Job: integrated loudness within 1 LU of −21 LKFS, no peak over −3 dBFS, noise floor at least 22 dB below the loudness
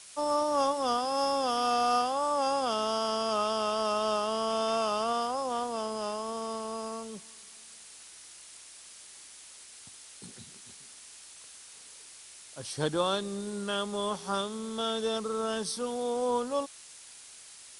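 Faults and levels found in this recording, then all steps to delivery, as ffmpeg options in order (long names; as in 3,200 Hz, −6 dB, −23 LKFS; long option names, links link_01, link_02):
background noise floor −51 dBFS; target noise floor −53 dBFS; integrated loudness −30.5 LKFS; sample peak −15.0 dBFS; target loudness −21.0 LKFS
→ -af "afftdn=noise_reduction=6:noise_floor=-51"
-af "volume=9.5dB"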